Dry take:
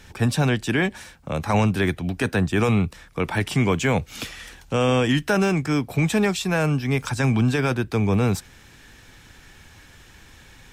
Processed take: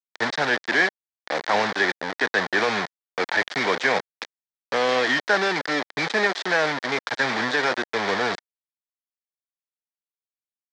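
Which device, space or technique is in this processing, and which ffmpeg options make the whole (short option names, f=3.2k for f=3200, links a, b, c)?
hand-held game console: -af "acrusher=bits=3:mix=0:aa=0.000001,highpass=500,equalizer=f=1.2k:t=q:w=4:g=-3,equalizer=f=1.8k:t=q:w=4:g=7,equalizer=f=2.7k:t=q:w=4:g=-9,lowpass=f=4.8k:w=0.5412,lowpass=f=4.8k:w=1.3066,volume=2.5dB"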